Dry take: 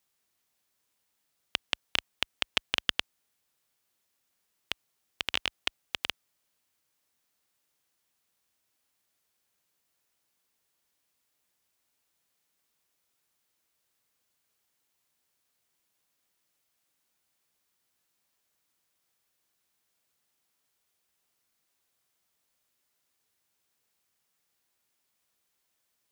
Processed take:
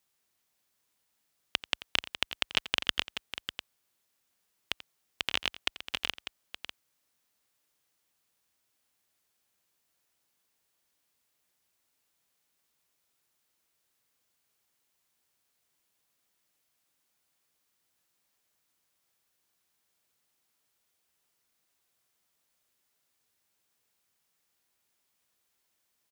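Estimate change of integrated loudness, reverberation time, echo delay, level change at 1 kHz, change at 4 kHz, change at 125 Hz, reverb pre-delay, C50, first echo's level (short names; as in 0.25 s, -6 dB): 0.0 dB, none, 87 ms, +0.5 dB, +0.5 dB, +0.5 dB, none, none, -16.5 dB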